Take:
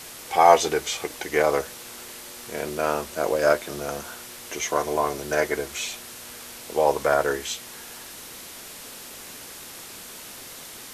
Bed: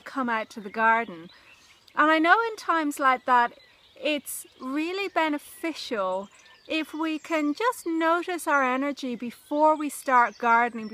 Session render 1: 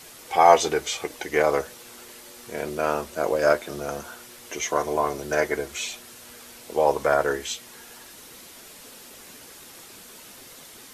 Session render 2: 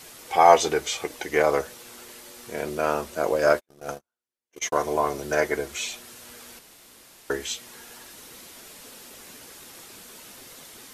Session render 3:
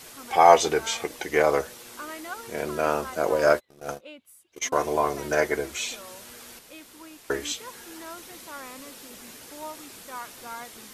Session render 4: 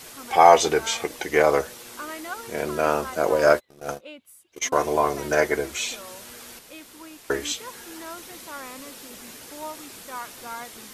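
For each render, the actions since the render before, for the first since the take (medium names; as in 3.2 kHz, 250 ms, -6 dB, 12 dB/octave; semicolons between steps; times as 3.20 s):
noise reduction 6 dB, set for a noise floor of -41 dBFS
3.47–4.79 s: gate -31 dBFS, range -50 dB; 6.59–7.30 s: room tone
add bed -18.5 dB
trim +2.5 dB; peak limiter -1 dBFS, peak gain reduction 2.5 dB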